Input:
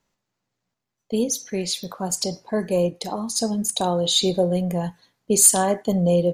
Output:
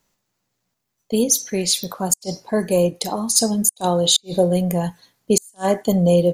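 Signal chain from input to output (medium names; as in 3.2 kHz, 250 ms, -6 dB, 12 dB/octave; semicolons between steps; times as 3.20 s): treble shelf 7.4 kHz +11 dB; inverted gate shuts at -6 dBFS, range -41 dB; trim +3.5 dB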